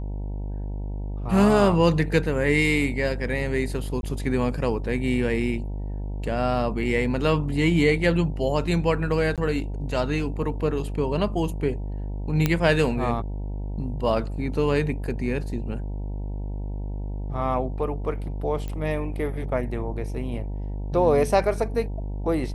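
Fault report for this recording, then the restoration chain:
buzz 50 Hz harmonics 19 -30 dBFS
4.01–4.03 gap 21 ms
9.36–9.38 gap 17 ms
12.46 pop -7 dBFS
18.68 pop -20 dBFS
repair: de-click; de-hum 50 Hz, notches 19; interpolate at 4.01, 21 ms; interpolate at 9.36, 17 ms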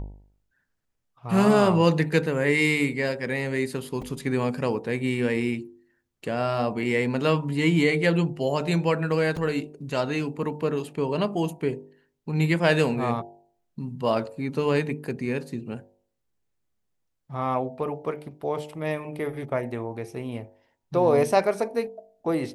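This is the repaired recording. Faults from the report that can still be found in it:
none

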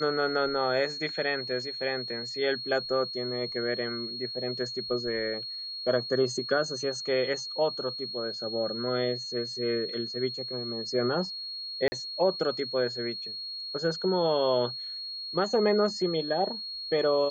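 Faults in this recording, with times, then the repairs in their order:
tone 4300 Hz -35 dBFS
11.88–11.92 gap 40 ms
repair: notch 4300 Hz, Q 30; interpolate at 11.88, 40 ms

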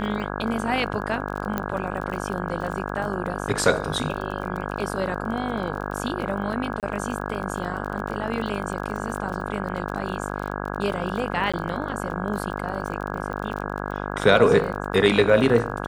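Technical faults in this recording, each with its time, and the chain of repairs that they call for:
buzz 50 Hz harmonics 33 -30 dBFS
crackle 28/s -31 dBFS
1.58 pop -11 dBFS
6.8–6.83 gap 28 ms
11.52–11.54 gap 16 ms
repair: de-click; de-hum 50 Hz, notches 33; interpolate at 6.8, 28 ms; interpolate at 11.52, 16 ms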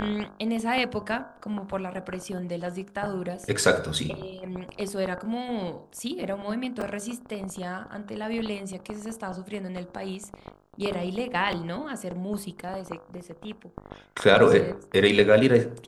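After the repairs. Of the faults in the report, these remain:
none

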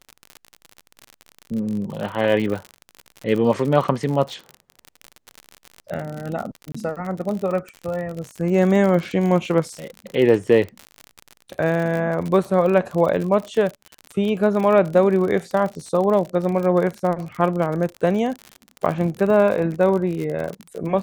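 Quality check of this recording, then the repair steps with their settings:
crackle 53/s -26 dBFS
6.72–6.75 gap 25 ms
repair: de-click; interpolate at 6.72, 25 ms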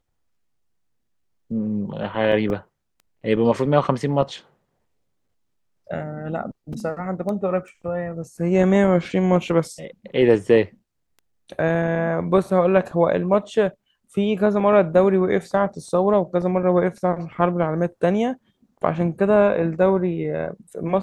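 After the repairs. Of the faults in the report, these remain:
none

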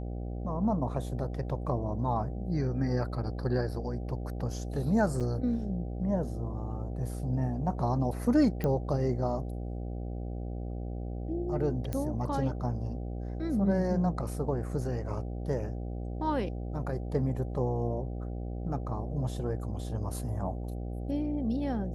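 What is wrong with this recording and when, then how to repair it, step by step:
buzz 60 Hz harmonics 13 -36 dBFS
5.2–5.21 gap 6.5 ms
8.64 pop -19 dBFS
11.93 pop -20 dBFS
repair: de-click; de-hum 60 Hz, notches 13; interpolate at 5.2, 6.5 ms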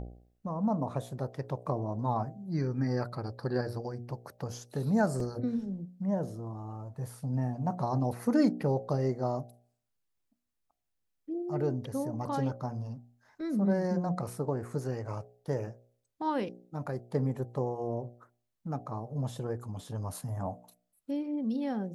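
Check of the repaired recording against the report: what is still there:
none

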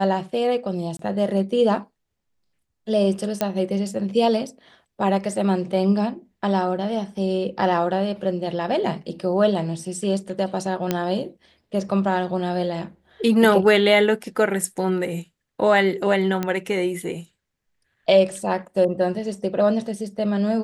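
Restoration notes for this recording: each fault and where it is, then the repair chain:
0.97–0.99 gap 23 ms
3.41 pop -7 dBFS
10.91 pop -7 dBFS
16.43 pop -11 dBFS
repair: de-click; interpolate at 0.97, 23 ms

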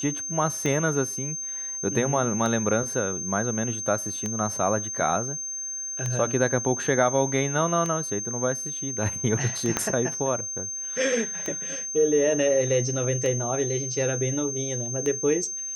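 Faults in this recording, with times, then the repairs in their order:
tick 33 1/3 rpm -15 dBFS
tone 6300 Hz -30 dBFS
9.77 pop -8 dBFS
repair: de-click; notch 6300 Hz, Q 30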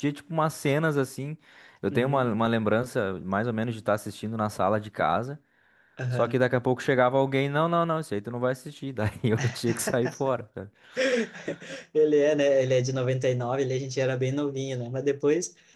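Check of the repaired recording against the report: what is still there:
9.77 pop

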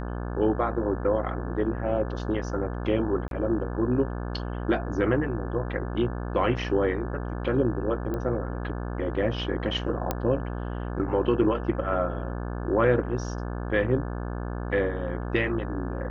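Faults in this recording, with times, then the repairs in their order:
buzz 60 Hz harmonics 29 -32 dBFS
3.28–3.31 gap 32 ms
8.14 pop -20 dBFS
10.11 pop -11 dBFS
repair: de-click; de-hum 60 Hz, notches 29; interpolate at 3.28, 32 ms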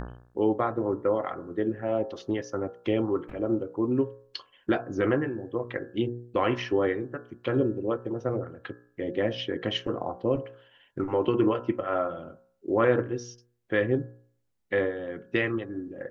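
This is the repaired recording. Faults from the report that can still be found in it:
none

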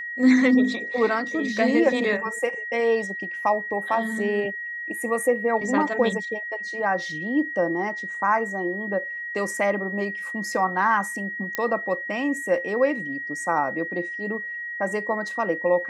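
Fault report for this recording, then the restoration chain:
tone 1900 Hz -30 dBFS
11.55 pop -11 dBFS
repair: de-click; notch 1900 Hz, Q 30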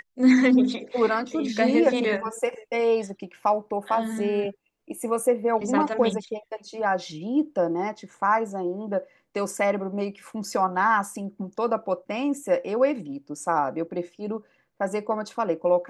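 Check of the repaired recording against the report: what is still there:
none

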